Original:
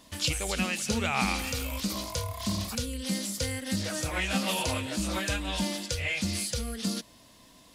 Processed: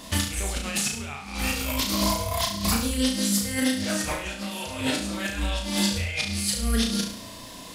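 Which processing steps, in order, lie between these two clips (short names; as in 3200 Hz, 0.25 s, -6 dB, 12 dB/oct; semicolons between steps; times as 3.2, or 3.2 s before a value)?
negative-ratio compressor -36 dBFS, ratio -0.5; on a send: flutter echo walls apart 6 m, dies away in 0.53 s; on the sum: gain +7 dB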